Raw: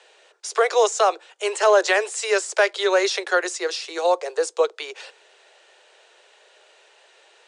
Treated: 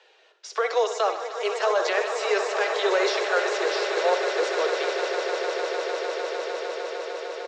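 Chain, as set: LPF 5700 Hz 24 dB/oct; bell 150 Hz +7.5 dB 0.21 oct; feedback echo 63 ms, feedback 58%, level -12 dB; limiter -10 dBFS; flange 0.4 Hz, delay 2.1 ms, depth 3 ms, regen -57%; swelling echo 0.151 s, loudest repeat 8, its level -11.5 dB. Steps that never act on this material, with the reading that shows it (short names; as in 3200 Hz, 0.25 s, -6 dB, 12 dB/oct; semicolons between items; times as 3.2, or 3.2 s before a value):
bell 150 Hz: input band starts at 300 Hz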